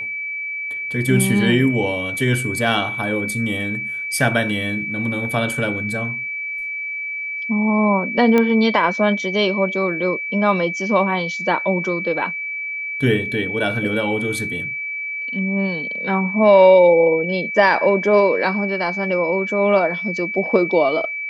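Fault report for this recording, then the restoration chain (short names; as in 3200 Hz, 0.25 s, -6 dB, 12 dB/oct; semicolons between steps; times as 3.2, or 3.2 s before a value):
tone 2300 Hz -24 dBFS
8.38 pop -6 dBFS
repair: de-click; notch 2300 Hz, Q 30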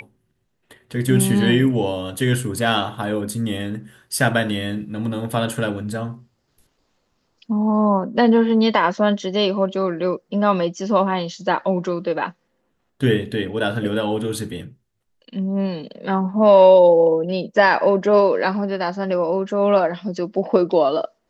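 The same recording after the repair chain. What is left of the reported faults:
none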